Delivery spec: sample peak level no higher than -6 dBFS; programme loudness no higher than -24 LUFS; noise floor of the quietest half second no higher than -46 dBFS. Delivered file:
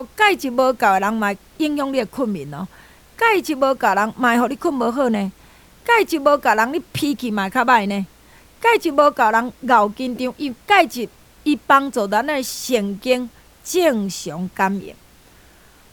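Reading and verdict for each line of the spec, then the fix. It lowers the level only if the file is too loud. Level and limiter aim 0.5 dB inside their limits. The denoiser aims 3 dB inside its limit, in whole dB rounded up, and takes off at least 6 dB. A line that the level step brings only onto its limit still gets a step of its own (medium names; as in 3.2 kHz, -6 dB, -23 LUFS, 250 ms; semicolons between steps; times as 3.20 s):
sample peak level -2.0 dBFS: fail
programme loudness -18.5 LUFS: fail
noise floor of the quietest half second -49 dBFS: pass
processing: trim -6 dB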